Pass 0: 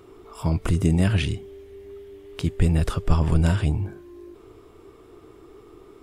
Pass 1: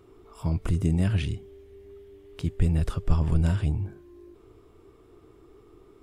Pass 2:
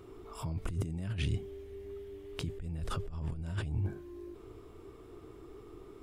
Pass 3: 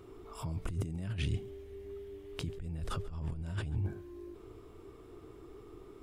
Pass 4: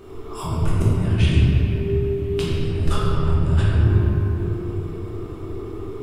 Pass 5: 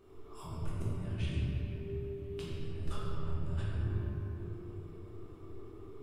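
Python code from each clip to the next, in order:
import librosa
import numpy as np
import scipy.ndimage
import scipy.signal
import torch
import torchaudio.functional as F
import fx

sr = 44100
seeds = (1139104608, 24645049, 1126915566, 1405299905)

y1 = fx.low_shelf(x, sr, hz=220.0, db=6.0)
y1 = F.gain(torch.from_numpy(y1), -8.0).numpy()
y2 = fx.over_compress(y1, sr, threshold_db=-31.0, ratio=-1.0)
y2 = F.gain(torch.from_numpy(y2), -4.0).numpy()
y3 = y2 + 10.0 ** (-21.0 / 20.0) * np.pad(y2, (int(138 * sr / 1000.0), 0))[:len(y2)]
y3 = F.gain(torch.from_numpy(y3), -1.0).numpy()
y4 = fx.room_shoebox(y3, sr, seeds[0], volume_m3=200.0, walls='hard', distance_m=1.2)
y4 = F.gain(torch.from_numpy(y4), 8.0).numpy()
y5 = fx.comb_fb(y4, sr, f0_hz=580.0, decay_s=0.56, harmonics='all', damping=0.0, mix_pct=70)
y5 = F.gain(torch.from_numpy(y5), -8.0).numpy()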